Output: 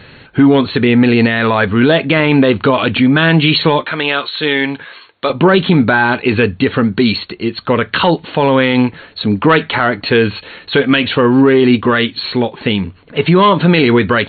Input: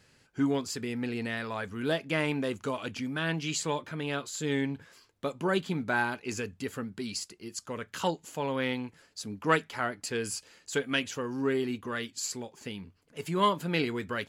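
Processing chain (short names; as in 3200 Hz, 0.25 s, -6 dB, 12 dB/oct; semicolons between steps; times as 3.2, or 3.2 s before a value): 3.81–5.3 HPF 940 Hz 6 dB/oct; soft clip -16.5 dBFS, distortion -22 dB; brick-wall FIR low-pass 4400 Hz; maximiser +26.5 dB; gain -1 dB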